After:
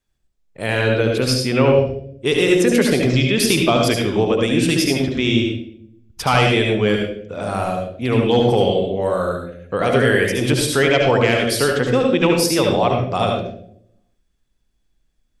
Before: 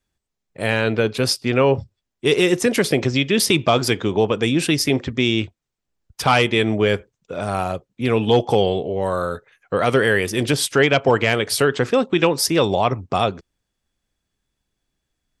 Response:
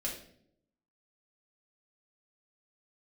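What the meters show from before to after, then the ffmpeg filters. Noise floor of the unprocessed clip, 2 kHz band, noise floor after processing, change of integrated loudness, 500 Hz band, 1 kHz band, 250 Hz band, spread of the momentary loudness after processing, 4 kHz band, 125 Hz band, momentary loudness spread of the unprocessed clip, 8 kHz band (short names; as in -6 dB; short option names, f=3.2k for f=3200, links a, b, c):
-81 dBFS, +1.0 dB, -66 dBFS, +1.5 dB, +2.0 dB, +0.5 dB, +3.0 dB, 10 LU, +1.0 dB, +3.0 dB, 8 LU, +0.5 dB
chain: -filter_complex "[0:a]asplit=2[a][b];[1:a]atrim=start_sample=2205,lowshelf=f=81:g=11,adelay=71[c];[b][c]afir=irnorm=-1:irlink=0,volume=-3.5dB[d];[a][d]amix=inputs=2:normalize=0,volume=-1.5dB"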